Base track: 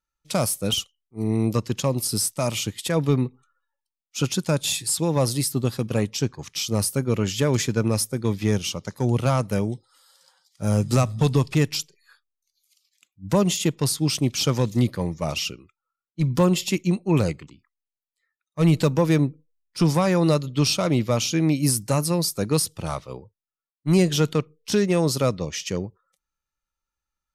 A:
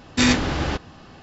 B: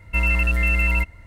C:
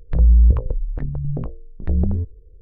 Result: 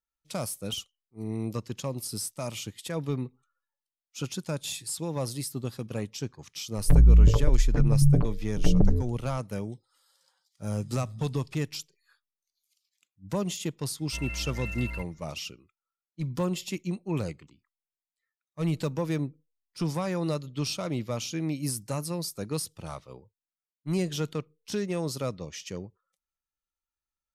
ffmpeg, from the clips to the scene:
-filter_complex "[0:a]volume=-10dB[a];[3:a]aecho=1:1:6.9:0.88[b];[2:a]aresample=32000,aresample=44100[c];[b]atrim=end=2.61,asetpts=PTS-STARTPTS,afade=t=in:d=0.004:c=hsin,afade=t=out:st=2.606:d=0.004:c=hsin,adelay=6770[d];[c]atrim=end=1.26,asetpts=PTS-STARTPTS,volume=-16.5dB,afade=t=in:d=0.004:c=hsin,afade=t=out:st=1.256:d=0.004:c=hsin,adelay=13990[e];[a][d][e]amix=inputs=3:normalize=0"

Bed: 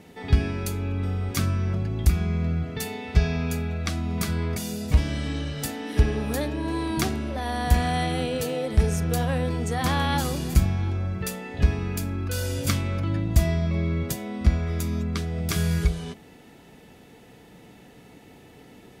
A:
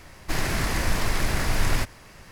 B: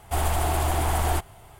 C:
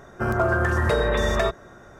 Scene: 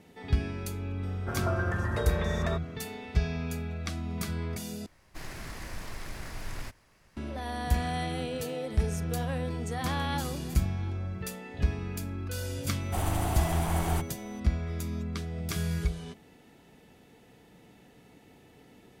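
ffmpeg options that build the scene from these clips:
-filter_complex "[0:a]volume=-7dB[a];[2:a]aeval=exprs='val(0)+0.00355*sin(2*PI*6000*n/s)':c=same[b];[a]asplit=2[c][d];[c]atrim=end=4.864[e];[1:a]atrim=end=2.31,asetpts=PTS-STARTPTS,volume=-15.5dB[f];[d]atrim=start=7.166[g];[3:a]atrim=end=1.99,asetpts=PTS-STARTPTS,volume=-10.5dB,afade=t=in:d=0.004:c=hsin,afade=t=out:st=1.986:d=0.004:c=hsin,adelay=1070[h];[b]atrim=end=1.59,asetpts=PTS-STARTPTS,volume=-7dB,afade=t=in:d=0.004:c=hsin,afade=t=out:st=1.586:d=0.004:c=hsin,adelay=12810[i];[e][f]acrossfade=d=0.004:c1=hsin:c2=hsin[j];[j][g]acrossfade=d=0.004:c1=hsin:c2=hsin[k];[k][h][i]amix=inputs=3:normalize=0"

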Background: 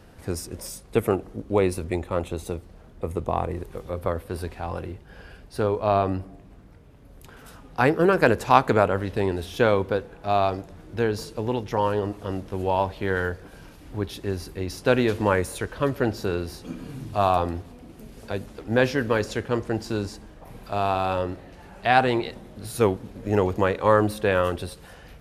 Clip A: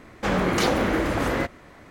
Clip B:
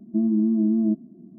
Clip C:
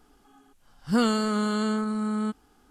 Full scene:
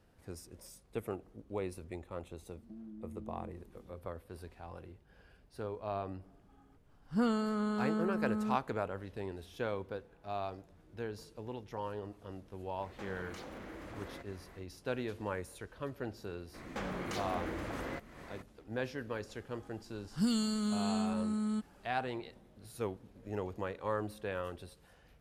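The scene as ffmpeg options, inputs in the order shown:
-filter_complex "[3:a]asplit=2[a][b];[1:a]asplit=2[c][d];[0:a]volume=-17dB[e];[2:a]acompressor=threshold=-32dB:ratio=6:attack=3.2:release=140:knee=1:detection=peak[f];[a]highshelf=f=2.4k:g=-11[g];[c]acompressor=threshold=-36dB:ratio=6:attack=3.2:release=140:knee=1:detection=peak[h];[d]acompressor=threshold=-44dB:ratio=2.5:attack=48:release=159:knee=1:detection=rms[i];[b]acrossover=split=260|3000[j][k][l];[k]acompressor=threshold=-40dB:ratio=6:attack=3.2:release=140:knee=2.83:detection=peak[m];[j][m][l]amix=inputs=3:normalize=0[n];[f]atrim=end=1.38,asetpts=PTS-STARTPTS,volume=-15dB,afade=t=in:d=0.004:c=hsin,afade=t=out:st=1.376:d=0.004:c=hsin,adelay=2560[o];[g]atrim=end=2.7,asetpts=PTS-STARTPTS,volume=-7.5dB,afade=t=in:d=0.004:c=hsin,afade=t=out:st=2.696:d=0.004:c=hsin,adelay=6240[p];[h]atrim=end=1.9,asetpts=PTS-STARTPTS,volume=-9dB,afade=t=in:d=0.1,afade=t=out:st=1.8:d=0.1,adelay=12760[q];[i]atrim=end=1.9,asetpts=PTS-STARTPTS,volume=-2.5dB,afade=t=in:d=0.02,afade=t=out:st=1.88:d=0.02,adelay=16530[r];[n]atrim=end=2.7,asetpts=PTS-STARTPTS,volume=-4dB,afade=t=in:d=0.004:c=hsin,afade=t=out:st=2.696:d=0.004:c=hsin,adelay=19290[s];[e][o][p][q][r][s]amix=inputs=6:normalize=0"

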